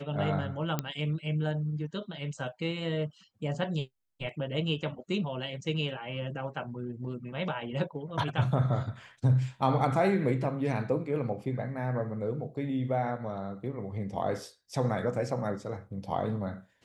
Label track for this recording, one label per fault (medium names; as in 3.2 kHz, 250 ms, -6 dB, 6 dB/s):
0.790000	0.790000	pop -15 dBFS